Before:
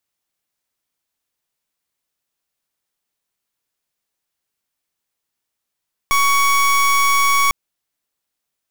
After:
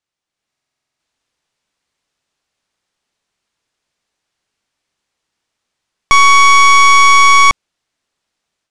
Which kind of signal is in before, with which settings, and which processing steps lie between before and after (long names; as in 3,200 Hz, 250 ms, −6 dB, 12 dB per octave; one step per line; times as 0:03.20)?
pulse wave 1,120 Hz, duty 27% −14.5 dBFS 1.40 s
Bessel low-pass filter 6,100 Hz, order 4
automatic gain control gain up to 9.5 dB
buffer that repeats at 0:00.49, samples 2,048, times 10